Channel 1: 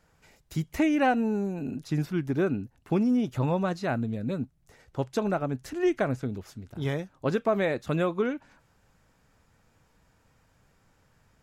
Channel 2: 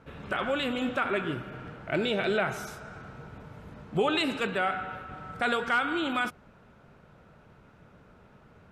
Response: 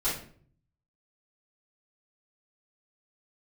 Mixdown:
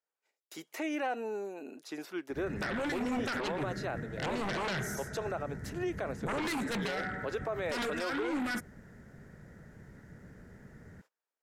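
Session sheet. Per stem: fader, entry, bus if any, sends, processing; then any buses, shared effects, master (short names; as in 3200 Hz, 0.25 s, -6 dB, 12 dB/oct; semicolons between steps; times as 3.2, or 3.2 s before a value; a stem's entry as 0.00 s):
-3.0 dB, 0.00 s, no send, HPF 360 Hz 24 dB/oct
-12.0 dB, 2.30 s, no send, EQ curve 220 Hz 0 dB, 410 Hz -3 dB, 1200 Hz -16 dB, 1900 Hz +6 dB, 2700 Hz -27 dB, 6200 Hz 0 dB; sine folder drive 13 dB, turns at -18.5 dBFS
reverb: off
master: gate -58 dBFS, range -24 dB; limiter -26 dBFS, peak gain reduction 9 dB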